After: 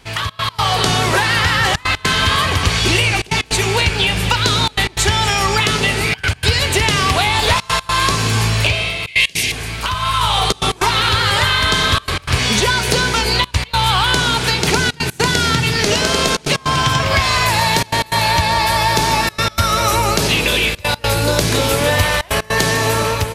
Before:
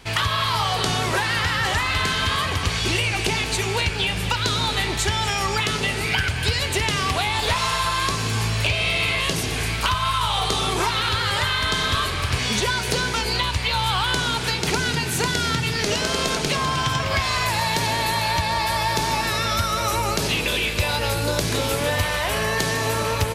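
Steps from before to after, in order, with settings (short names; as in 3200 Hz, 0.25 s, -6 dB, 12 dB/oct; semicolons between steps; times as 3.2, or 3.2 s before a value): 9.07–9.52 resonant high shelf 1700 Hz +9 dB, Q 3; AGC gain up to 10 dB; step gate "xxx.x.xxxxxxxxx" 154 bpm -24 dB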